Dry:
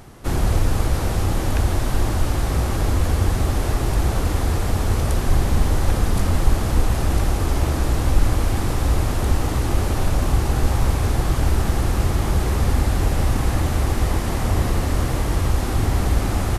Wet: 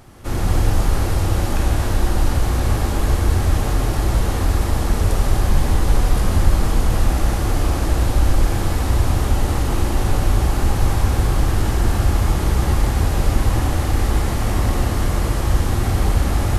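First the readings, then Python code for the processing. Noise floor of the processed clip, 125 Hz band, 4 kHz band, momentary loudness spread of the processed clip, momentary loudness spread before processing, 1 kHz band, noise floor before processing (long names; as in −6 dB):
−21 dBFS, +1.5 dB, +1.5 dB, 2 LU, 2 LU, +1.5 dB, −23 dBFS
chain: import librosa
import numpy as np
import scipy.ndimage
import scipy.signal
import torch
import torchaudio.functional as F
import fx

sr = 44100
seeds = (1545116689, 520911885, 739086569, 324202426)

y = fx.rev_gated(x, sr, seeds[0], gate_ms=310, shape='flat', drr_db=-2.5)
y = y * librosa.db_to_amplitude(-3.0)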